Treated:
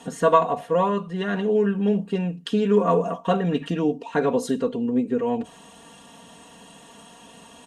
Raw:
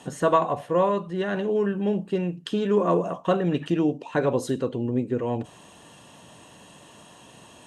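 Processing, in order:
comb filter 4.3 ms, depth 74%

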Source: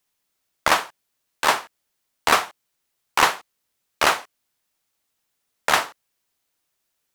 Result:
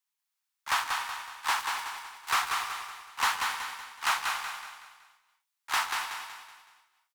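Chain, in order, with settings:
0:01.59–0:02.29: spectral envelope flattened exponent 0.6
Butterworth high-pass 810 Hz 48 dB per octave
leveller curve on the samples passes 2
volume swells 174 ms
repeating echo 187 ms, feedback 43%, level −4.5 dB
reverb whose tail is shaped and stops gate 320 ms rising, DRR 9 dB
level −7 dB

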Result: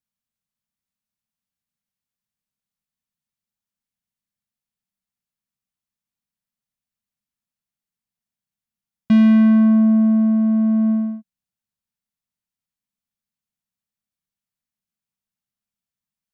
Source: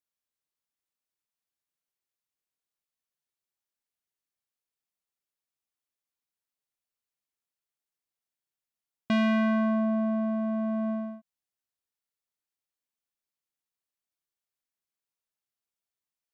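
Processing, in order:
low shelf with overshoot 270 Hz +8 dB, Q 3

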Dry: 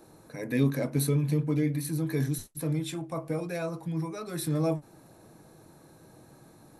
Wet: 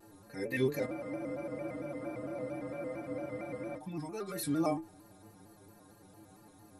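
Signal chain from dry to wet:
stiff-string resonator 98 Hz, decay 0.28 s, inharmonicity 0.008
frozen spectrum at 0:00.89, 2.88 s
pitch modulation by a square or saw wave square 4.4 Hz, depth 100 cents
level +6 dB

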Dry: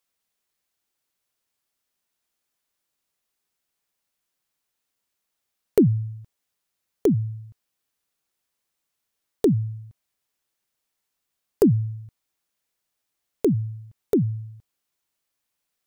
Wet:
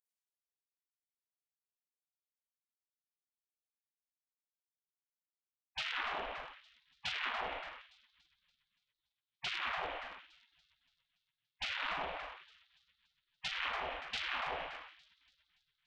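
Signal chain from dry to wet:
variable-slope delta modulation 16 kbit/s
0:11.64–0:13.57: low-pass that shuts in the quiet parts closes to 1,800 Hz, open at −17.5 dBFS
four-comb reverb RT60 0.73 s, combs from 27 ms, DRR −4 dB
in parallel at +1.5 dB: downward compressor 8 to 1, threshold −27 dBFS, peak gain reduction 18.5 dB
on the sum: brickwall limiter −11 dBFS, peak gain reduction 11 dB
automatic gain control gain up to 15 dB
soft clipping −15 dBFS, distortion −7 dB
on a send: echo with a time of its own for lows and highs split 340 Hz, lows 113 ms, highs 286 ms, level −13.5 dB
on the sum: gate on every frequency bin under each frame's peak −30 dB weak
level +1.5 dB

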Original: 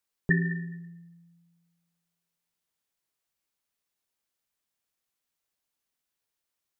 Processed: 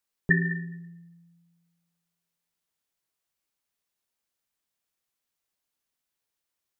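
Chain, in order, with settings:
dynamic equaliser 1,300 Hz, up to +5 dB, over −40 dBFS, Q 0.74

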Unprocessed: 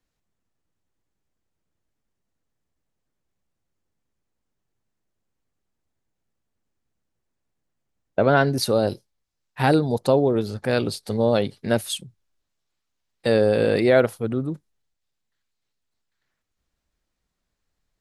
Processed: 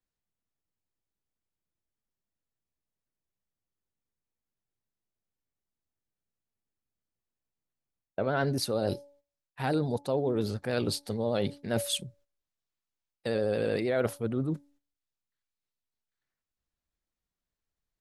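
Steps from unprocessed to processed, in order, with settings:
pitch vibrato 13 Hz 43 cents
hum removal 285.2 Hz, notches 3
reversed playback
downward compressor 4 to 1, threshold −27 dBFS, peak gain reduction 13 dB
reversed playback
noise gate −59 dBFS, range −12 dB

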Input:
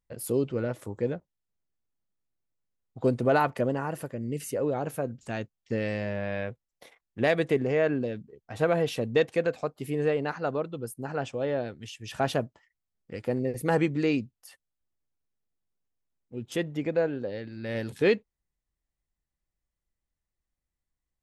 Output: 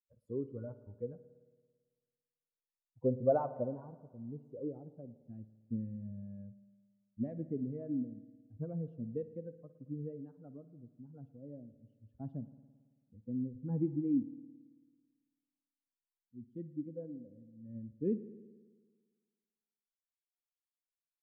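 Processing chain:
spectral dynamics exaggerated over time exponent 2
low-pass filter sweep 870 Hz → 260 Hz, 0:01.88–0:05.88
spring reverb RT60 1.5 s, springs 55 ms, chirp 45 ms, DRR 13.5 dB
level −6.5 dB

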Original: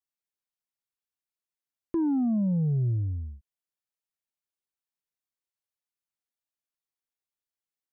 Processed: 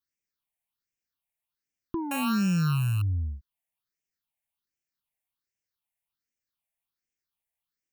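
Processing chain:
0:02.11–0:03.02: samples sorted by size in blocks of 32 samples
all-pass phaser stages 6, 1.3 Hz, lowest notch 330–1,100 Hz
downward compressor 2 to 1, threshold −32 dBFS, peak gain reduction 4.5 dB
level +5.5 dB

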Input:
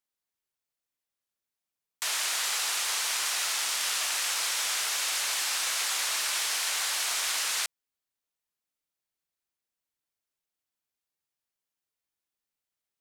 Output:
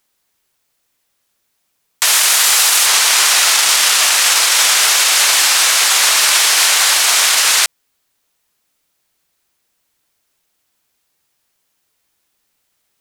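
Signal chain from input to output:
0:02.05–0:02.86: high-shelf EQ 9,700 Hz +8.5 dB
boost into a limiter +22.5 dB
level −1 dB

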